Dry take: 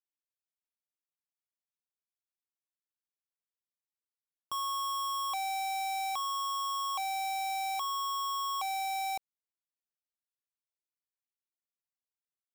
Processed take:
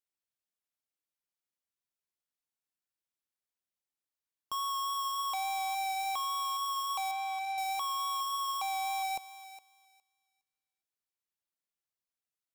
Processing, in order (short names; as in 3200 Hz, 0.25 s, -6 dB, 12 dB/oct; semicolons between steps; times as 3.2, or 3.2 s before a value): vibrato 3.5 Hz 13 cents; 7.11–7.58 band-pass 1300 Hz, Q 0.56; on a send: thinning echo 0.412 s, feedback 19%, high-pass 860 Hz, level -13 dB